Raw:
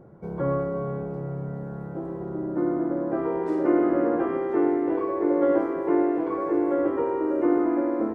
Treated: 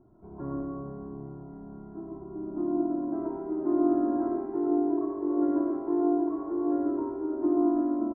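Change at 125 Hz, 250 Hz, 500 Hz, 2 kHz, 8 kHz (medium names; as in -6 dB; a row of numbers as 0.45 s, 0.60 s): -11.0 dB, -2.5 dB, -7.0 dB, under -15 dB, no reading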